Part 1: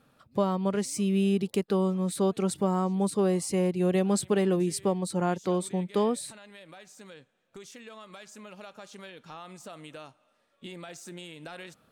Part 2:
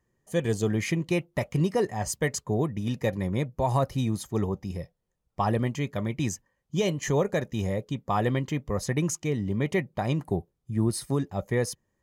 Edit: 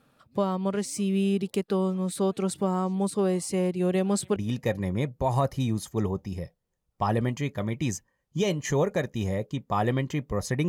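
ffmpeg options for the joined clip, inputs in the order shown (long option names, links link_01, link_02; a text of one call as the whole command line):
ffmpeg -i cue0.wav -i cue1.wav -filter_complex "[0:a]apad=whole_dur=10.68,atrim=end=10.68,atrim=end=4.362[link_01];[1:a]atrim=start=2.738:end=9.06[link_02];[link_01][link_02]acrossfade=duration=0.004:curve1=hsin:curve2=hsin" out.wav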